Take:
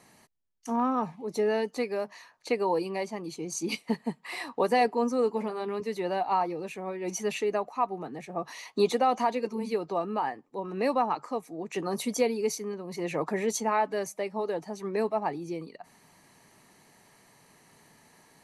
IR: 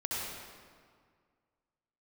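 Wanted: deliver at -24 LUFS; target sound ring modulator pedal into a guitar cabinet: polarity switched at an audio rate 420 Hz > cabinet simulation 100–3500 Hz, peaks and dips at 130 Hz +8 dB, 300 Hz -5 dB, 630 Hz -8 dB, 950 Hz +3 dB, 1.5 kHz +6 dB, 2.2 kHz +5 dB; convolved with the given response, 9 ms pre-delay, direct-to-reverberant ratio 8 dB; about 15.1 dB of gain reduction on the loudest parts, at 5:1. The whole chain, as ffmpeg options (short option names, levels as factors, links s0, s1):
-filter_complex "[0:a]acompressor=threshold=0.0141:ratio=5,asplit=2[s0][s1];[1:a]atrim=start_sample=2205,adelay=9[s2];[s1][s2]afir=irnorm=-1:irlink=0,volume=0.224[s3];[s0][s3]amix=inputs=2:normalize=0,aeval=exprs='val(0)*sgn(sin(2*PI*420*n/s))':c=same,highpass=100,equalizer=f=130:t=q:w=4:g=8,equalizer=f=300:t=q:w=4:g=-5,equalizer=f=630:t=q:w=4:g=-8,equalizer=f=950:t=q:w=4:g=3,equalizer=f=1500:t=q:w=4:g=6,equalizer=f=2200:t=q:w=4:g=5,lowpass=f=3500:w=0.5412,lowpass=f=3500:w=1.3066,volume=5.62"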